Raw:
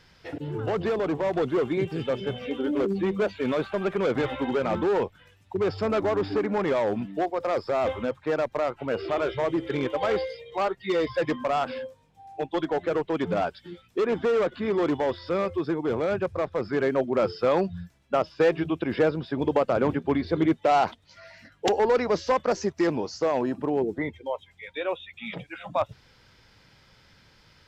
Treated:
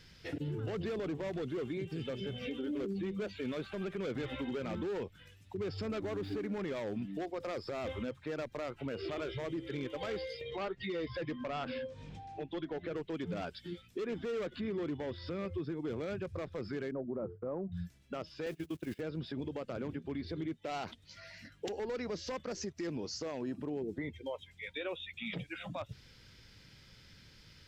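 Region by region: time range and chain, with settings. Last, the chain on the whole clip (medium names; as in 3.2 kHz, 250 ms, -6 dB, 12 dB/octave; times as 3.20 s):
6.02–6.59 s: band-stop 5.1 kHz, Q 10 + hysteresis with a dead band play -49 dBFS
10.41–12.96 s: distance through air 130 m + upward compressor, threshold -30 dBFS
14.61–15.72 s: high-pass 46 Hz + tone controls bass +4 dB, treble -6 dB
16.91–17.72 s: low-pass 1.1 kHz 24 dB/octave + expander -38 dBFS + hum notches 50/100 Hz
18.46–19.01 s: jump at every zero crossing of -37.5 dBFS + gate -28 dBFS, range -25 dB + treble shelf 5.9 kHz +6.5 dB
whole clip: peaking EQ 860 Hz -11.5 dB 1.7 oct; compression 10:1, threshold -34 dBFS; peak limiter -31 dBFS; trim +1 dB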